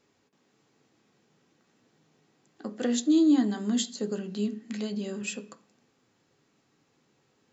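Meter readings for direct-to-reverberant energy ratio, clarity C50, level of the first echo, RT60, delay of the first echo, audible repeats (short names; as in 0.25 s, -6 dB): 5.0 dB, 16.5 dB, none, 0.45 s, none, none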